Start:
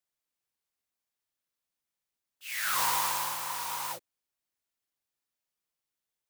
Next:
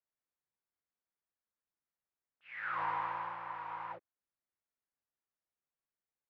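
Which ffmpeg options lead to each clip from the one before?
ffmpeg -i in.wav -af "lowpass=frequency=2000:width=0.5412,lowpass=frequency=2000:width=1.3066,volume=-4.5dB" out.wav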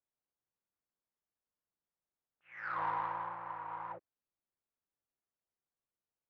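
ffmpeg -i in.wav -af "adynamicsmooth=sensitivity=1:basefreq=1600,volume=2dB" out.wav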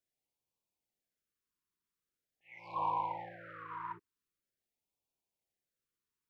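ffmpeg -i in.wav -af "afftfilt=real='re*(1-between(b*sr/1024,620*pow(1600/620,0.5+0.5*sin(2*PI*0.44*pts/sr))/1.41,620*pow(1600/620,0.5+0.5*sin(2*PI*0.44*pts/sr))*1.41))':imag='im*(1-between(b*sr/1024,620*pow(1600/620,0.5+0.5*sin(2*PI*0.44*pts/sr))/1.41,620*pow(1600/620,0.5+0.5*sin(2*PI*0.44*pts/sr))*1.41))':win_size=1024:overlap=0.75,volume=2.5dB" out.wav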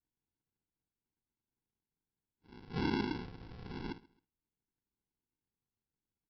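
ffmpeg -i in.wav -af "aresample=11025,acrusher=samples=18:mix=1:aa=0.000001,aresample=44100,aecho=1:1:134|268:0.0668|0.0214,volume=1dB" out.wav

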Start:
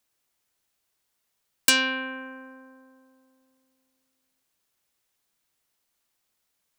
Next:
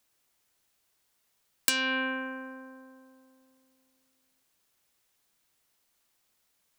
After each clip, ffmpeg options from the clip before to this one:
ffmpeg -i in.wav -af "acompressor=threshold=-26dB:ratio=8,volume=3dB" out.wav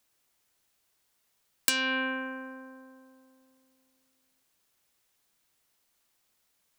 ffmpeg -i in.wav -af anull out.wav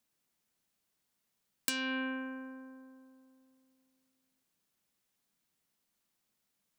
ffmpeg -i in.wav -af "equalizer=frequency=200:width_type=o:width=1.1:gain=10,volume=-8dB" out.wav

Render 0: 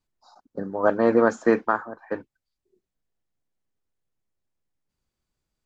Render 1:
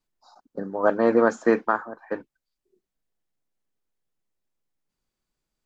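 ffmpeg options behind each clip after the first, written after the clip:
ffmpeg -i in.wav -af "equalizer=frequency=80:width_type=o:width=0.93:gain=-11" out.wav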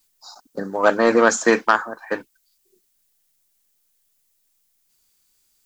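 ffmpeg -i in.wav -af "aeval=exprs='0.501*(cos(1*acos(clip(val(0)/0.501,-1,1)))-cos(1*PI/2))+0.02*(cos(5*acos(clip(val(0)/0.501,-1,1)))-cos(5*PI/2))':channel_layout=same,crystalizer=i=9:c=0,volume=1dB" out.wav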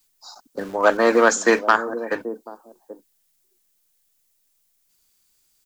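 ffmpeg -i in.wav -filter_complex "[0:a]acrossover=split=190|750|3300[link_01][link_02][link_03][link_04];[link_01]aeval=exprs='(mod(112*val(0)+1,2)-1)/112':channel_layout=same[link_05];[link_02]aecho=1:1:784:0.282[link_06];[link_05][link_06][link_03][link_04]amix=inputs=4:normalize=0" out.wav

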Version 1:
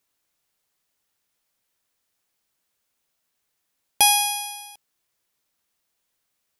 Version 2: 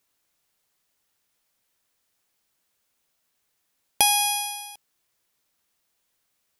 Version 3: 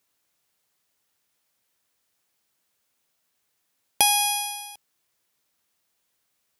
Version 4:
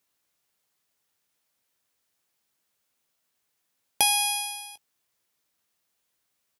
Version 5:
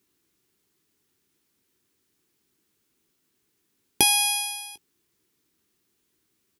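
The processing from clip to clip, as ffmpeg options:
ffmpeg -i in.wav -af "acompressor=threshold=-20dB:ratio=2.5,volume=2dB" out.wav
ffmpeg -i in.wav -af "highpass=60" out.wav
ffmpeg -i in.wav -filter_complex "[0:a]asplit=2[link_01][link_02];[link_02]adelay=19,volume=-12.5dB[link_03];[link_01][link_03]amix=inputs=2:normalize=0,volume=-3dB" out.wav
ffmpeg -i in.wav -af "lowshelf=frequency=470:width_type=q:width=3:gain=8,volume=3dB" out.wav

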